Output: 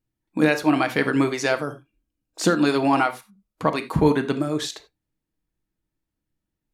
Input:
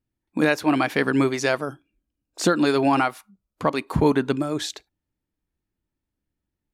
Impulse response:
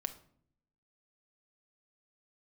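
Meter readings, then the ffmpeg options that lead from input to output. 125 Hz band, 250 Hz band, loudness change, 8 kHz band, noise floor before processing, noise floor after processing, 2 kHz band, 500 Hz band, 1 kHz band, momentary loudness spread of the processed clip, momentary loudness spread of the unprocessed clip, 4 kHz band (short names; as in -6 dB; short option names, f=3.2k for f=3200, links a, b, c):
+1.0 dB, +0.5 dB, +0.5 dB, 0.0 dB, -84 dBFS, -83 dBFS, +0.5 dB, 0.0 dB, +0.5 dB, 8 LU, 9 LU, 0.0 dB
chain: -filter_complex "[1:a]atrim=start_sample=2205,atrim=end_sample=3969,asetrate=38808,aresample=44100[a];[0:a][a]afir=irnorm=-1:irlink=0"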